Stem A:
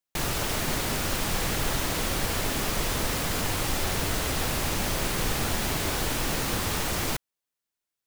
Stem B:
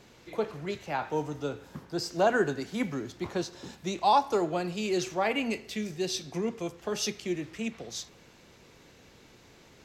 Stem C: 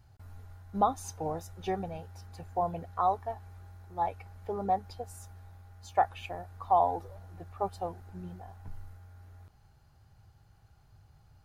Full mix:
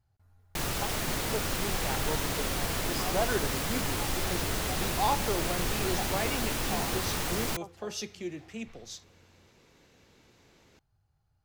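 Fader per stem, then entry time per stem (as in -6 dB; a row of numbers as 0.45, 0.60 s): -3.5, -5.5, -14.0 dB; 0.40, 0.95, 0.00 s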